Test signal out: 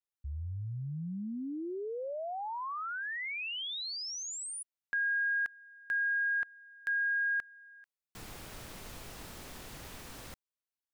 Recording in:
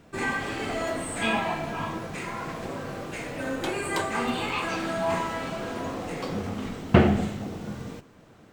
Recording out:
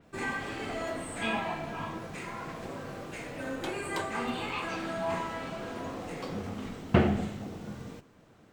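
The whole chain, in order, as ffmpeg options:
ffmpeg -i in.wav -af "adynamicequalizer=threshold=0.00708:dfrequency=4900:dqfactor=0.7:tfrequency=4900:tqfactor=0.7:attack=5:release=100:ratio=0.375:range=1.5:mode=cutabove:tftype=highshelf,volume=-5.5dB" out.wav

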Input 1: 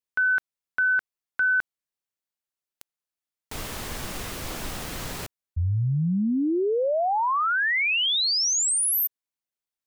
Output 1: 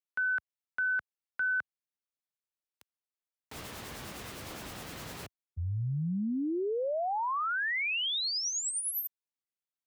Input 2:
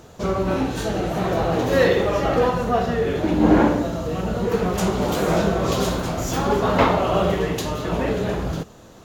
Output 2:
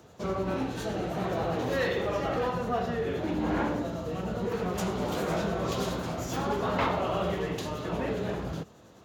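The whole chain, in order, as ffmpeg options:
ffmpeg -i in.wav -filter_complex "[0:a]highpass=69,acrossover=split=110|860|5100[link_01][link_02][link_03][link_04];[link_02]alimiter=limit=-15.5dB:level=0:latency=1[link_05];[link_04]tremolo=f=9.8:d=0.6[link_06];[link_01][link_05][link_03][link_06]amix=inputs=4:normalize=0,volume=-8dB" out.wav

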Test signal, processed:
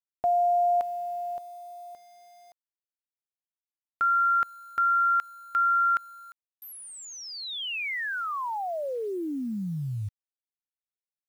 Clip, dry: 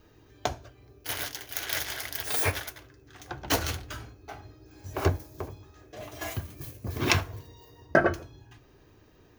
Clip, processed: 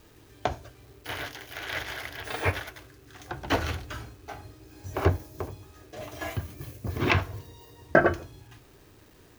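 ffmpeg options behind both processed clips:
ffmpeg -i in.wav -filter_complex "[0:a]acrusher=bits=9:mix=0:aa=0.000001,acrossover=split=3400[link_01][link_02];[link_02]acompressor=threshold=-47dB:ratio=4:attack=1:release=60[link_03];[link_01][link_03]amix=inputs=2:normalize=0,volume=2dB" out.wav

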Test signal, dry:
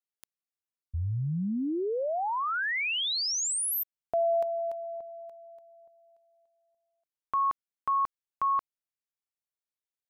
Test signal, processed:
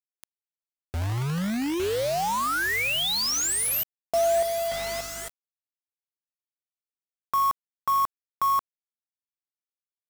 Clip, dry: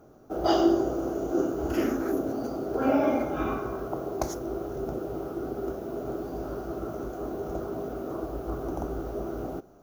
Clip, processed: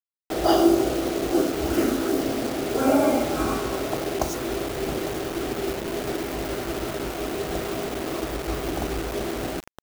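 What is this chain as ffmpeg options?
ffmpeg -i in.wav -af "aeval=exprs='val(0)+0.002*(sin(2*PI*50*n/s)+sin(2*PI*2*50*n/s)/2+sin(2*PI*3*50*n/s)/3+sin(2*PI*4*50*n/s)/4+sin(2*PI*5*50*n/s)/5)':channel_layout=same,aecho=1:1:854|1708|2562|3416:0.15|0.0748|0.0374|0.0187,acrusher=bits=5:mix=0:aa=0.000001,volume=4dB" out.wav

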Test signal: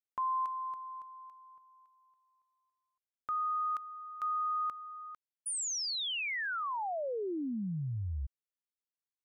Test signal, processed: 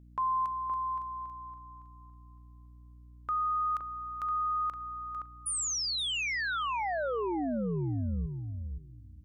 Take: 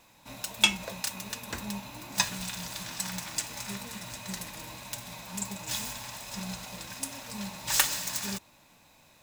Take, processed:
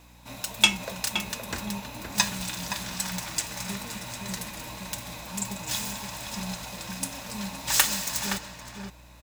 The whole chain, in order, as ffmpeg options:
ffmpeg -i in.wav -filter_complex "[0:a]aeval=exprs='val(0)+0.00158*(sin(2*PI*60*n/s)+sin(2*PI*2*60*n/s)/2+sin(2*PI*3*60*n/s)/3+sin(2*PI*4*60*n/s)/4+sin(2*PI*5*60*n/s)/5)':channel_layout=same,asplit=2[link_01][link_02];[link_02]adelay=519,lowpass=frequency=1800:poles=1,volume=-5dB,asplit=2[link_03][link_04];[link_04]adelay=519,lowpass=frequency=1800:poles=1,volume=0.16,asplit=2[link_05][link_06];[link_06]adelay=519,lowpass=frequency=1800:poles=1,volume=0.16[link_07];[link_03][link_05][link_07]amix=inputs=3:normalize=0[link_08];[link_01][link_08]amix=inputs=2:normalize=0,volume=3dB" out.wav

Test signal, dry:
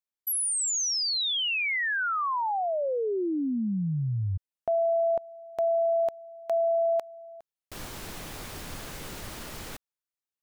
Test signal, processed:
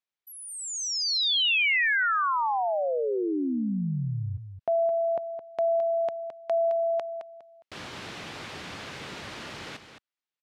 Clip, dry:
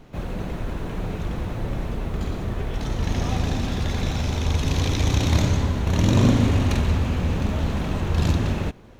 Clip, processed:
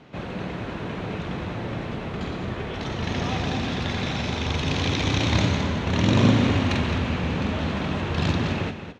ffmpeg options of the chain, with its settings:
ffmpeg -i in.wav -filter_complex "[0:a]highpass=110,lowpass=3200,highshelf=frequency=2100:gain=9.5,asplit=2[link_01][link_02];[link_02]aecho=0:1:215:0.335[link_03];[link_01][link_03]amix=inputs=2:normalize=0" out.wav

